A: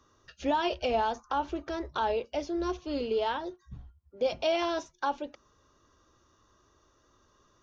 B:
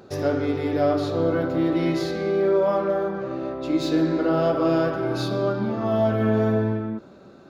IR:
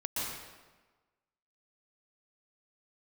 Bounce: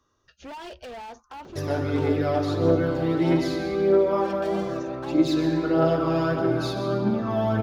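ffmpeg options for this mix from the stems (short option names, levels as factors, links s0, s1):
-filter_complex "[0:a]volume=35.5,asoftclip=hard,volume=0.0282,volume=0.531[s0];[1:a]aphaser=in_gain=1:out_gain=1:delay=1.3:decay=0.46:speed=1.6:type=triangular,adelay=1450,volume=0.631,asplit=2[s1][s2];[s2]volume=0.299[s3];[2:a]atrim=start_sample=2205[s4];[s3][s4]afir=irnorm=-1:irlink=0[s5];[s0][s1][s5]amix=inputs=3:normalize=0"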